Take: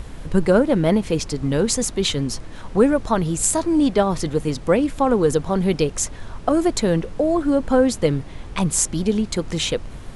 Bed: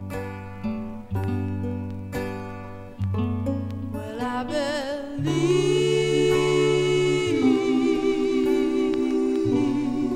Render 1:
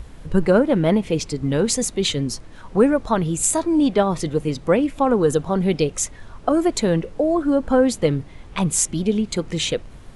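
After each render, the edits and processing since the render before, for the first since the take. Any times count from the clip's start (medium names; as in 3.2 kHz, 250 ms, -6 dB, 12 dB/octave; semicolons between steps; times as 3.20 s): noise print and reduce 6 dB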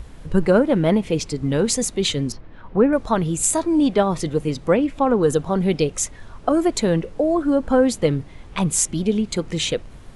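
2.32–2.93 s: distance through air 320 m; 4.73–5.23 s: distance through air 55 m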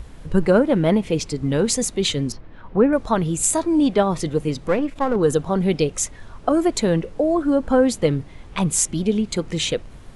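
4.68–5.16 s: partial rectifier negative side -7 dB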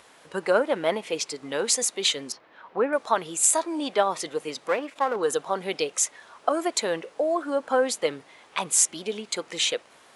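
high-pass 630 Hz 12 dB/octave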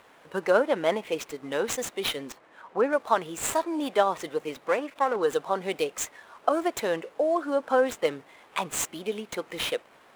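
median filter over 9 samples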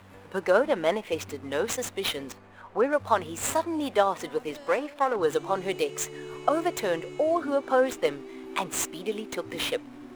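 add bed -20 dB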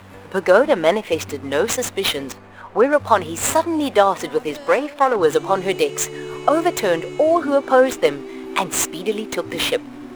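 trim +9 dB; peak limiter -1 dBFS, peak gain reduction 1.5 dB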